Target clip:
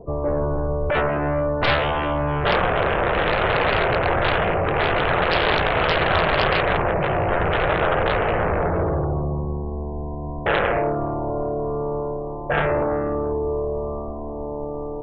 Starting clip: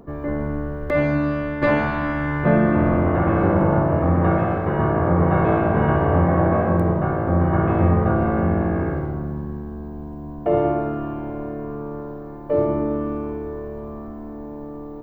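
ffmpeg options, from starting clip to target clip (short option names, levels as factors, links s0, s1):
-filter_complex "[0:a]highshelf=f=1500:t=q:w=3:g=-13,aeval=exprs='0.668*(cos(1*acos(clip(val(0)/0.668,-1,1)))-cos(1*PI/2))+0.0531*(cos(2*acos(clip(val(0)/0.668,-1,1)))-cos(2*PI/2))+0.00841*(cos(5*acos(clip(val(0)/0.668,-1,1)))-cos(5*PI/2))+0.335*(cos(7*acos(clip(val(0)/0.668,-1,1)))-cos(7*PI/2))':c=same,equalizer=f=250:t=o:w=1:g=-12,equalizer=f=500:t=o:w=1:g=4,equalizer=f=1000:t=o:w=1:g=-6,equalizer=f=2000:t=o:w=1:g=-5,acrossover=split=770[s0][s1];[s0]alimiter=limit=0.168:level=0:latency=1:release=24[s2];[s2][s1]amix=inputs=2:normalize=0,afftdn=nr=16:nf=-38"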